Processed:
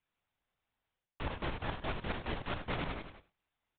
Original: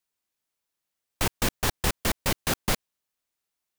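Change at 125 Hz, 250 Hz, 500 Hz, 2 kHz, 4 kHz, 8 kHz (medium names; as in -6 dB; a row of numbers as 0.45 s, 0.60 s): -8.0 dB, -9.0 dB, -8.0 dB, -9.5 dB, -14.0 dB, under -40 dB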